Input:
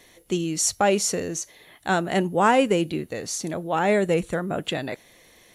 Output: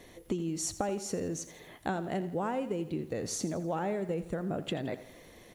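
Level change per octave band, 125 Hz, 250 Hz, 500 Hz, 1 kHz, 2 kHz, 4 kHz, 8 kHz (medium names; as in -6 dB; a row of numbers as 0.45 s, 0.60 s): -7.0 dB, -8.5 dB, -11.0 dB, -13.5 dB, -16.0 dB, -13.0 dB, -11.5 dB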